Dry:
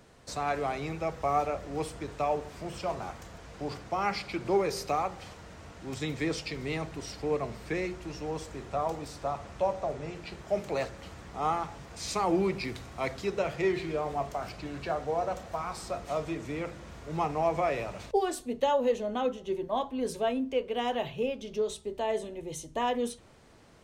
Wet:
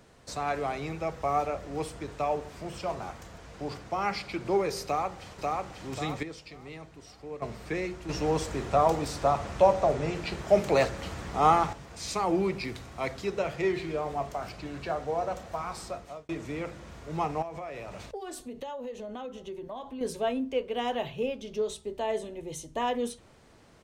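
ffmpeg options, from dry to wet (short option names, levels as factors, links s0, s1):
-filter_complex "[0:a]asplit=2[s0][s1];[s1]afade=t=in:st=4.84:d=0.01,afade=t=out:st=5.58:d=0.01,aecho=0:1:540|1080|1620|2160|2700|3240:0.841395|0.378628|0.170383|0.0766721|0.0345025|0.0155261[s2];[s0][s2]amix=inputs=2:normalize=0,asettb=1/sr,asplit=3[s3][s4][s5];[s3]atrim=end=17.424[s6];[s4]atrim=start=17.42:end=20.01,asetpts=PTS-STARTPTS,afade=t=in:d=0.004:c=qsin,afade=t=out:st=2.586:d=0.004:c=qsin,acompressor=threshold=0.0158:ratio=5:attack=3.2:release=140:knee=1:detection=peak[s7];[s5]atrim=start=20.006[s8];[s6][s7]acrossfade=d=0.004:c1=hsin:c2=qsin[s9];[s9][s8]acrossfade=d=0.004:c1=qsin:c2=hsin,asplit=6[s10][s11][s12][s13][s14][s15];[s10]atrim=end=6.232[s16];[s11]atrim=start=6.228:end=7.422,asetpts=PTS-STARTPTS,volume=0.299[s17];[s12]atrim=start=7.418:end=8.092[s18];[s13]atrim=start=8.088:end=11.732,asetpts=PTS-STARTPTS,volume=2.51[s19];[s14]atrim=start=11.728:end=16.29,asetpts=PTS-STARTPTS,afade=t=out:st=4.092:d=0.47[s20];[s15]atrim=start=16.29,asetpts=PTS-STARTPTS,afade=t=in:d=0.004:c=hsin[s21];[s16][s17]acrossfade=d=0.004:c1=hsin:c2=hsin[s22];[s22][s18]acrossfade=d=0.004:c1=hsin:c2=hsin[s23];[s23][s19]acrossfade=d=0.004:c1=hsin:c2=hsin[s24];[s20][s21]concat=n=2:v=0:a=1[s25];[s24][s25]acrossfade=d=0.004:c1=hsin:c2=hsin"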